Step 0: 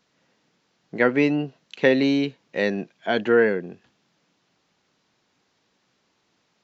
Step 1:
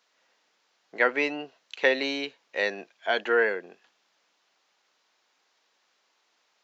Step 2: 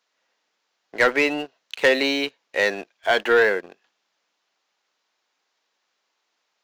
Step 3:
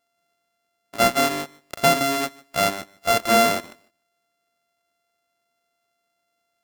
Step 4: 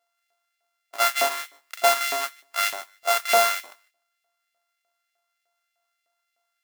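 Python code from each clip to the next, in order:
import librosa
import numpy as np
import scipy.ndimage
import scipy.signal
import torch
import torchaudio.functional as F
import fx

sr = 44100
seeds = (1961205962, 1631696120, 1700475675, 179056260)

y1 = scipy.signal.sosfilt(scipy.signal.butter(2, 620.0, 'highpass', fs=sr, output='sos'), x)
y2 = fx.leveller(y1, sr, passes=2)
y3 = np.r_[np.sort(y2[:len(y2) // 64 * 64].reshape(-1, 64), axis=1).ravel(), y2[len(y2) // 64 * 64:]]
y3 = fx.echo_feedback(y3, sr, ms=150, feedback_pct=18, wet_db=-23.5)
y4 = fx.mod_noise(y3, sr, seeds[0], snr_db=10)
y4 = fx.filter_lfo_highpass(y4, sr, shape='saw_up', hz=3.3, low_hz=600.0, high_hz=2400.0, q=1.5)
y4 = y4 * 10.0 ** (-3.0 / 20.0)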